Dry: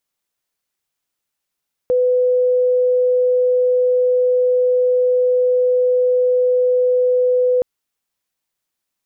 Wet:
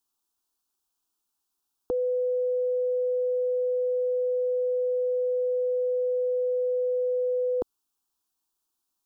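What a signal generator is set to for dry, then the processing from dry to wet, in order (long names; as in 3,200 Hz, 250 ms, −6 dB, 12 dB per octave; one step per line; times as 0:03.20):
tone sine 500 Hz −12 dBFS 5.72 s
phaser with its sweep stopped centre 550 Hz, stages 6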